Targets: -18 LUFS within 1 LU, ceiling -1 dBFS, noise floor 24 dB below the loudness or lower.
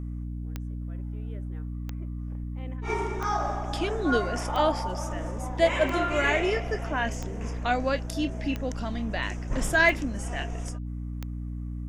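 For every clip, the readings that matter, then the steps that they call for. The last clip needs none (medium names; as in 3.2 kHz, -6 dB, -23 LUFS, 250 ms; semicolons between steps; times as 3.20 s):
clicks found 9; hum 60 Hz; highest harmonic 300 Hz; hum level -31 dBFS; loudness -29.0 LUFS; peak level -8.5 dBFS; loudness target -18.0 LUFS
-> de-click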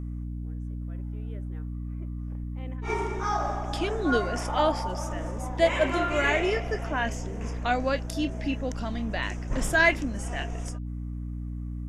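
clicks found 0; hum 60 Hz; highest harmonic 300 Hz; hum level -31 dBFS
-> hum notches 60/120/180/240/300 Hz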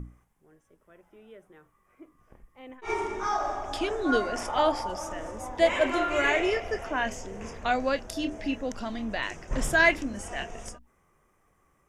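hum not found; loudness -28.0 LUFS; peak level -8.5 dBFS; loudness target -18.0 LUFS
-> trim +10 dB; peak limiter -1 dBFS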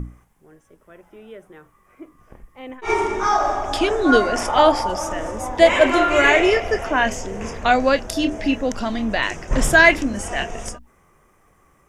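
loudness -18.5 LUFS; peak level -1.0 dBFS; noise floor -58 dBFS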